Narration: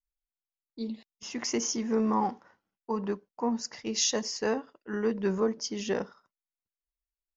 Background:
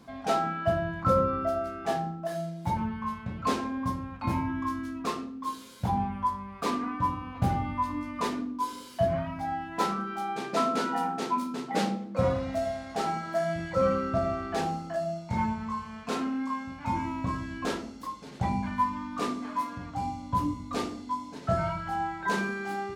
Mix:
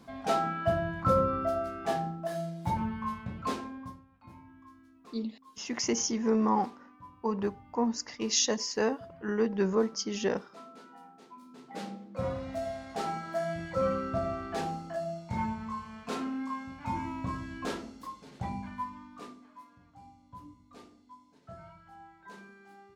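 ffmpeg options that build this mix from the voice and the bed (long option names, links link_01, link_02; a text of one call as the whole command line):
ffmpeg -i stem1.wav -i stem2.wav -filter_complex "[0:a]adelay=4350,volume=0.5dB[link_01];[1:a]volume=17.5dB,afade=type=out:start_time=3.14:duration=0.91:silence=0.0841395,afade=type=in:start_time=11.36:duration=1.45:silence=0.112202,afade=type=out:start_time=17.83:duration=1.66:silence=0.141254[link_02];[link_01][link_02]amix=inputs=2:normalize=0" out.wav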